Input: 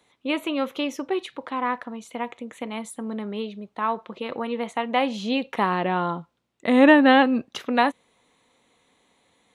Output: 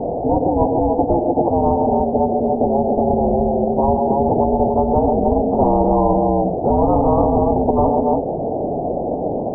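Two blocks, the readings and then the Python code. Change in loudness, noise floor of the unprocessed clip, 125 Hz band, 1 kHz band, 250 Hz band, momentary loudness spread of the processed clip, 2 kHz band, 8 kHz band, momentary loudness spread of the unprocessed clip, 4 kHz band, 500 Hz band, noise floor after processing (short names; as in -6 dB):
+6.5 dB, -70 dBFS, +17.5 dB, +8.0 dB, +5.5 dB, 6 LU, under -40 dB, under -35 dB, 17 LU, under -40 dB, +11.0 dB, -23 dBFS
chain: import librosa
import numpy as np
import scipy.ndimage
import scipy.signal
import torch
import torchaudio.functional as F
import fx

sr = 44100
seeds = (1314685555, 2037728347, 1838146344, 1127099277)

p1 = fx.partial_stretch(x, sr, pct=81)
p2 = fx.transient(p1, sr, attack_db=0, sustain_db=-5)
p3 = fx.low_shelf(p2, sr, hz=210.0, db=7.5)
p4 = fx.echo_multitap(p3, sr, ms=(50, 110, 140, 264, 291), db=(-18.0, -17.5, -14.0, -19.5, -10.0))
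p5 = fx.dmg_noise_colour(p4, sr, seeds[0], colour='blue', level_db=-31.0)
p6 = 10.0 ** (-17.5 / 20.0) * (np.abs((p5 / 10.0 ** (-17.5 / 20.0) + 3.0) % 4.0 - 2.0) - 1.0)
p7 = p5 + (p6 * librosa.db_to_amplitude(-7.0))
p8 = scipy.signal.sosfilt(scipy.signal.butter(12, 750.0, 'lowpass', fs=sr, output='sos'), p7)
y = fx.spectral_comp(p8, sr, ratio=10.0)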